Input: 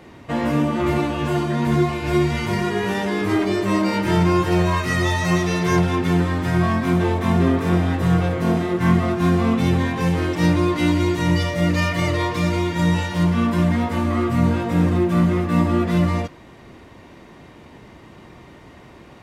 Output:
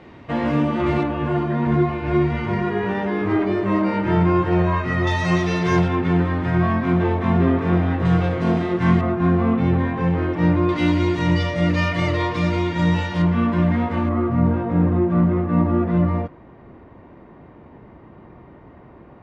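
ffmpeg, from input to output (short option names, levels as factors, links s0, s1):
-af "asetnsamples=n=441:p=0,asendcmd='1.03 lowpass f 2000;5.07 lowpass f 4500;5.88 lowpass f 2500;8.05 lowpass f 4200;9.01 lowpass f 1800;10.69 lowpass f 4200;13.22 lowpass f 2500;14.09 lowpass f 1300',lowpass=3700"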